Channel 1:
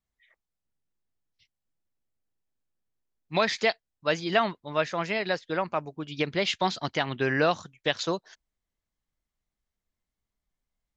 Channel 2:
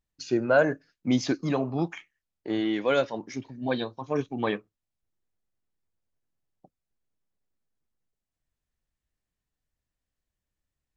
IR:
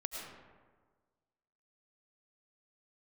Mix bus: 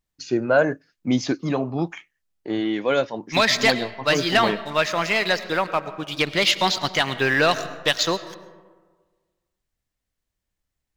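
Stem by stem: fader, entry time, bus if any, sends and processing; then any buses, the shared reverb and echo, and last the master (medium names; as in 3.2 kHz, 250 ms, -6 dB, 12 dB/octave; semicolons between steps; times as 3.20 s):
-1.5 dB, 0.00 s, send -9 dB, tilt shelf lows -4.5 dB, about 1.3 kHz; waveshaping leveller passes 2
+3.0 dB, 0.00 s, no send, none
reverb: on, RT60 1.5 s, pre-delay 65 ms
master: none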